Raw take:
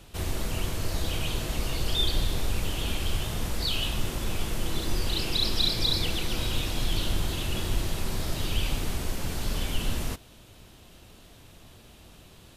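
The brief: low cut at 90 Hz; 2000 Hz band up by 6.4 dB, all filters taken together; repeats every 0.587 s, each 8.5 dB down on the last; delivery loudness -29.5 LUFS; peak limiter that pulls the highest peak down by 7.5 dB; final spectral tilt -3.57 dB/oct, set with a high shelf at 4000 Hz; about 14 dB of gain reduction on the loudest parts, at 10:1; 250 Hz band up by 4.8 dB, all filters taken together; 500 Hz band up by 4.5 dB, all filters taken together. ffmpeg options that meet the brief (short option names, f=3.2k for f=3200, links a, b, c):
-af "highpass=90,equalizer=f=250:t=o:g=5.5,equalizer=f=500:t=o:g=3.5,equalizer=f=2k:t=o:g=7,highshelf=f=4k:g=4.5,acompressor=threshold=-33dB:ratio=10,alimiter=level_in=6dB:limit=-24dB:level=0:latency=1,volume=-6dB,aecho=1:1:587|1174|1761|2348:0.376|0.143|0.0543|0.0206,volume=8.5dB"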